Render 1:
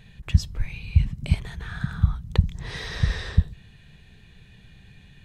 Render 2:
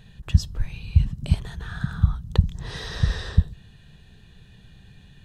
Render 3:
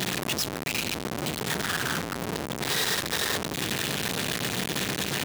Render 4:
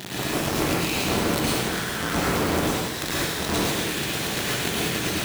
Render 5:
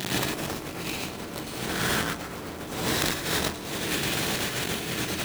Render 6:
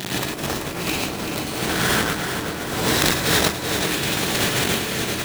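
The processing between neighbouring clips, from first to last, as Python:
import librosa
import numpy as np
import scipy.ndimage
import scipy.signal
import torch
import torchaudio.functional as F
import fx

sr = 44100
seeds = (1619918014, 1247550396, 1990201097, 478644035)

y1 = fx.peak_eq(x, sr, hz=2200.0, db=-12.0, octaves=0.29)
y1 = F.gain(torch.from_numpy(y1), 1.0).numpy()
y2 = np.sign(y1) * np.sqrt(np.mean(np.square(y1)))
y2 = scipy.signal.sosfilt(scipy.signal.butter(2, 210.0, 'highpass', fs=sr, output='sos'), y2)
y3 = fx.over_compress(y2, sr, threshold_db=-33.0, ratio=-0.5)
y3 = fx.rev_plate(y3, sr, seeds[0], rt60_s=1.2, hf_ratio=0.9, predelay_ms=90, drr_db=-8.0)
y4 = fx.over_compress(y3, sr, threshold_db=-29.0, ratio=-0.5)
y5 = fx.tremolo_random(y4, sr, seeds[1], hz=2.3, depth_pct=55)
y5 = fx.echo_feedback(y5, sr, ms=383, feedback_pct=54, wet_db=-8.0)
y5 = F.gain(torch.from_numpy(y5), 8.0).numpy()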